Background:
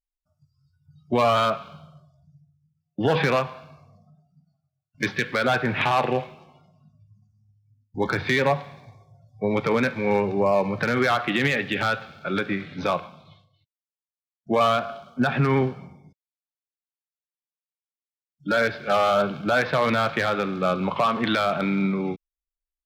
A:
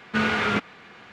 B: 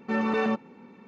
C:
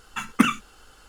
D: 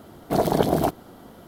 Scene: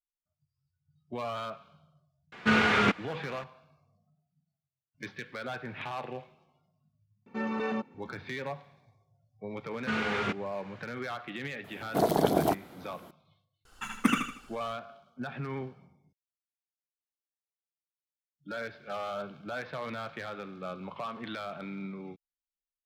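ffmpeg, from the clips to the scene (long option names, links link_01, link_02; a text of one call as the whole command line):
ffmpeg -i bed.wav -i cue0.wav -i cue1.wav -i cue2.wav -i cue3.wav -filter_complex "[1:a]asplit=2[link_01][link_02];[0:a]volume=-16dB[link_03];[4:a]highpass=frequency=140:poles=1[link_04];[3:a]aecho=1:1:78|156|234|312|390:0.668|0.247|0.0915|0.0339|0.0125[link_05];[link_01]atrim=end=1.12,asetpts=PTS-STARTPTS,volume=-0.5dB,afade=type=in:duration=0.004:curve=hsin,afade=type=out:start_time=1.116:duration=0.004:curve=hsin,adelay=2320[link_06];[2:a]atrim=end=1.07,asetpts=PTS-STARTPTS,volume=-6.5dB,afade=type=in:duration=0.004:curve=hsin,afade=type=out:start_time=1.066:duration=0.004:curve=hsin,adelay=7260[link_07];[link_02]atrim=end=1.12,asetpts=PTS-STARTPTS,volume=-8dB,afade=type=in:duration=0.004:curve=hsin,afade=type=out:start_time=1.116:duration=0.004:curve=hsin,adelay=9730[link_08];[link_04]atrim=end=1.47,asetpts=PTS-STARTPTS,volume=-4dB,afade=type=in:duration=0.004:curve=hsin,afade=type=out:start_time=1.466:duration=0.004:curve=hsin,adelay=11640[link_09];[link_05]atrim=end=1.08,asetpts=PTS-STARTPTS,volume=-7.5dB,afade=type=in:duration=0.004:curve=hsin,afade=type=out:start_time=1.076:duration=0.004:curve=hsin,adelay=13650[link_10];[link_03][link_06][link_07][link_08][link_09][link_10]amix=inputs=6:normalize=0" out.wav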